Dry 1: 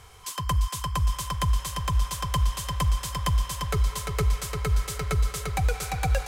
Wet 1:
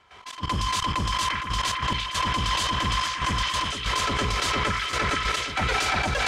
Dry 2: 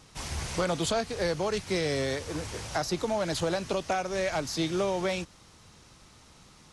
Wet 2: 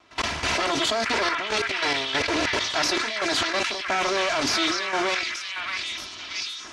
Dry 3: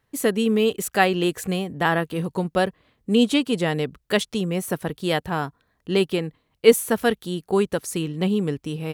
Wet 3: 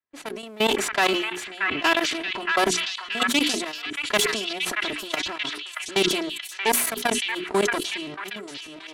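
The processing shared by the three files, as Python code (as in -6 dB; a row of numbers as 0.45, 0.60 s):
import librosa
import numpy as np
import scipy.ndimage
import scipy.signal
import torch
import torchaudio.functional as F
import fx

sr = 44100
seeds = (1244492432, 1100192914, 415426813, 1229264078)

p1 = fx.lower_of_two(x, sr, delay_ms=3.0)
p2 = fx.highpass(p1, sr, hz=220.0, slope=6)
p3 = fx.env_lowpass(p2, sr, base_hz=2600.0, full_db=-19.0)
p4 = fx.tilt_shelf(p3, sr, db=-3.0, hz=1200.0)
p5 = fx.hum_notches(p4, sr, base_hz=60, count=7)
p6 = fx.level_steps(p5, sr, step_db=22)
p7 = fx.step_gate(p6, sr, bpm=140, pattern='.x..xxxxxxxx..xx', floor_db=-12.0, edge_ms=4.5)
p8 = p7 + fx.echo_stepped(p7, sr, ms=629, hz=1700.0, octaves=0.7, feedback_pct=70, wet_db=-0.5, dry=0)
p9 = fx.sustainer(p8, sr, db_per_s=42.0)
y = p9 * 10.0 ** (-26 / 20.0) / np.sqrt(np.mean(np.square(p9)))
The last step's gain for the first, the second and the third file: +18.5, +19.5, +3.0 dB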